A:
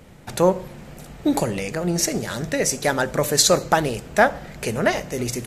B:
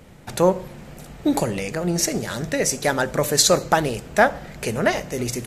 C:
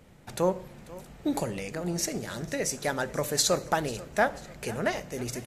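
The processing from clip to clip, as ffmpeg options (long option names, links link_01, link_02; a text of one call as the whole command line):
ffmpeg -i in.wav -af anull out.wav
ffmpeg -i in.wav -af "aecho=1:1:491|982|1473:0.112|0.0494|0.0217,volume=-8.5dB" out.wav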